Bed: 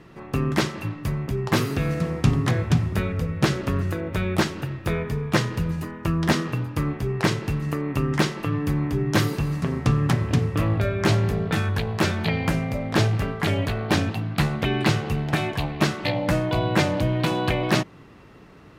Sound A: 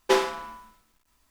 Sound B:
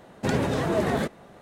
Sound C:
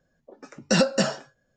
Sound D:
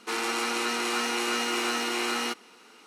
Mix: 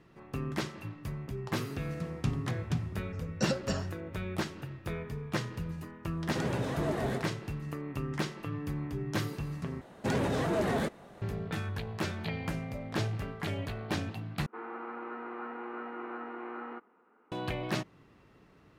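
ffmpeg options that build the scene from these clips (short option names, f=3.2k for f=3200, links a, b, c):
-filter_complex "[2:a]asplit=2[a][b];[0:a]volume=-12dB[c];[a]aecho=1:1:127:0.501[d];[b]asoftclip=type=tanh:threshold=-19.5dB[e];[4:a]lowpass=f=1.5k:w=0.5412,lowpass=f=1.5k:w=1.3066[f];[c]asplit=3[g][h][i];[g]atrim=end=9.814[j];[e]atrim=end=1.41,asetpts=PTS-STARTPTS,volume=-3dB[k];[h]atrim=start=11.216:end=14.464[l];[f]atrim=end=2.86,asetpts=PTS-STARTPTS,volume=-9.5dB[m];[i]atrim=start=17.316[n];[3:a]atrim=end=1.56,asetpts=PTS-STARTPTS,volume=-12.5dB,afade=t=in:d=0.004:c=hsin,afade=t=out:st=1.556:d=0.004:c=hsin,adelay=2700[o];[d]atrim=end=1.41,asetpts=PTS-STARTPTS,volume=-9.5dB,afade=t=in:d=0.004:c=hsin,afade=t=out:st=1.406:d=0.004:c=hsin,adelay=6110[p];[j][k]acrossfade=d=0.004:c1=hsin:c2=hsin[q];[q][l]acrossfade=d=0.004:c1=hsin:c2=hsin[r];[r][m]acrossfade=d=0.004:c1=hsin:c2=hsin[s];[s][n]acrossfade=d=0.004:c1=hsin:c2=hsin[t];[t][o][p]amix=inputs=3:normalize=0"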